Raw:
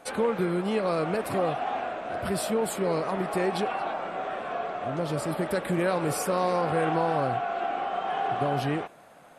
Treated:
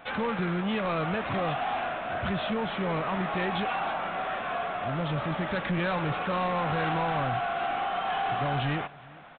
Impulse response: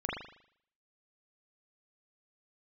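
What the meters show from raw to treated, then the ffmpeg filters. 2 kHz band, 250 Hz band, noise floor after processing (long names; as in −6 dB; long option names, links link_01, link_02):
+3.5 dB, −1.5 dB, −48 dBFS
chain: -filter_complex "[0:a]equalizer=frequency=420:width_type=o:width=1.6:gain=-11,aresample=8000,asoftclip=type=tanh:threshold=-30.5dB,aresample=44100,asplit=2[link_01][link_02];[link_02]adelay=402.3,volume=-23dB,highshelf=frequency=4000:gain=-9.05[link_03];[link_01][link_03]amix=inputs=2:normalize=0,volume=7dB"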